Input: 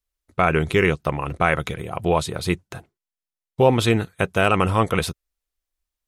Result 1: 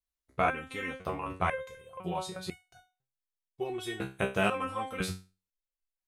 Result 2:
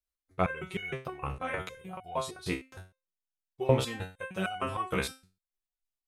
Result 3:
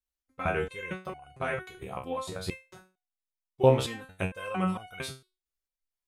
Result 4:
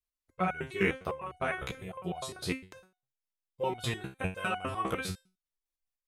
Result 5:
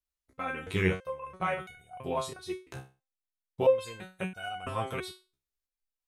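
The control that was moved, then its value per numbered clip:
resonator arpeggio, rate: 2 Hz, 6.5 Hz, 4.4 Hz, 9.9 Hz, 3 Hz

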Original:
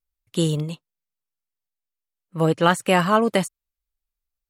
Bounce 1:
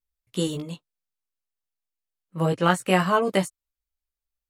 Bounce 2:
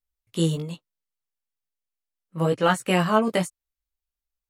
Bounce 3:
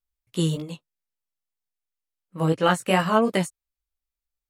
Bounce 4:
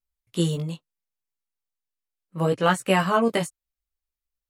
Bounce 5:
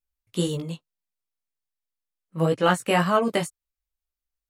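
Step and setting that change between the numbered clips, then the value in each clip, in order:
chorus, rate: 0.28 Hz, 1.1 Hz, 3 Hz, 0.7 Hz, 1.9 Hz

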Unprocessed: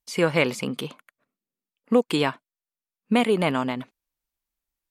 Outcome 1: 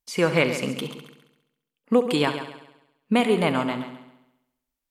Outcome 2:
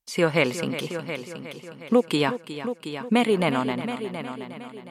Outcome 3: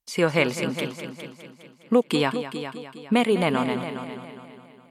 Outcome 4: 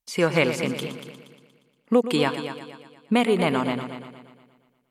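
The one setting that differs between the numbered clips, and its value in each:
multi-head delay, time: 68 ms, 362 ms, 205 ms, 118 ms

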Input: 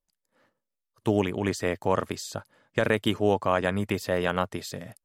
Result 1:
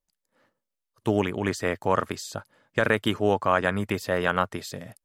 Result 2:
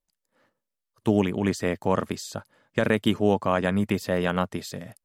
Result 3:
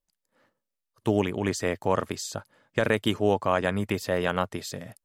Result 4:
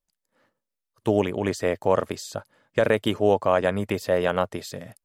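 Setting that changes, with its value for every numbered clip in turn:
dynamic bell, frequency: 1.4 kHz, 200 Hz, 6.5 kHz, 560 Hz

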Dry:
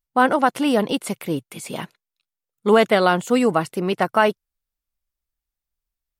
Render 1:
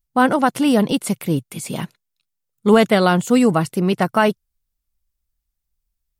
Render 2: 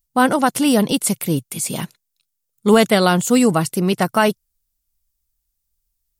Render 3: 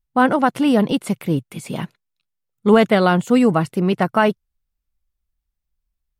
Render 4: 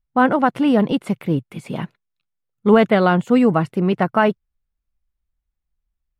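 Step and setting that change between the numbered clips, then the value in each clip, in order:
tone controls, treble: +5 dB, +14 dB, -3 dB, -14 dB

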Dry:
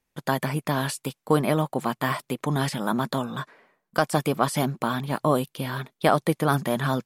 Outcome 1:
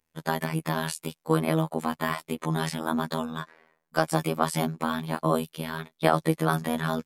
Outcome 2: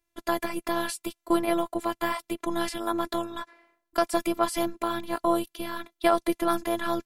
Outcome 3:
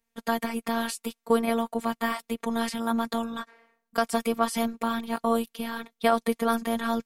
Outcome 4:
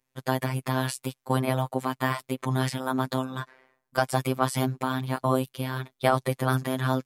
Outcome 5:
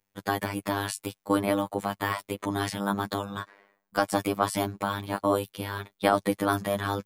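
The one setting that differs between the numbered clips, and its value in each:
robot voice, frequency: 80 Hz, 340 Hz, 230 Hz, 130 Hz, 100 Hz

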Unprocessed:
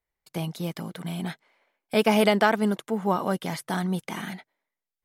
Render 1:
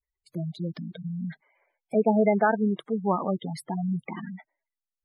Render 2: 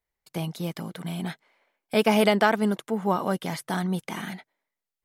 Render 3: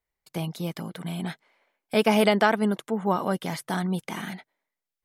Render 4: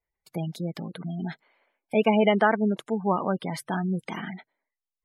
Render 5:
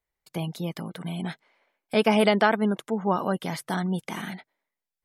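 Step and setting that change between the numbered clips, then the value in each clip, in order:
spectral gate, under each frame's peak: -10 dB, -60 dB, -45 dB, -20 dB, -35 dB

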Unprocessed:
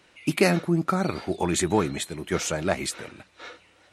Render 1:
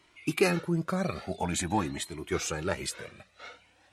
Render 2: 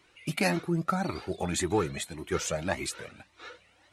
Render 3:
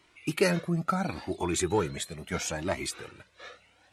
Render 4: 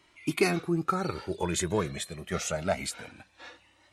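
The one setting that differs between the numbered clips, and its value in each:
Shepard-style flanger, rate: 0.48 Hz, 1.8 Hz, 0.73 Hz, 0.25 Hz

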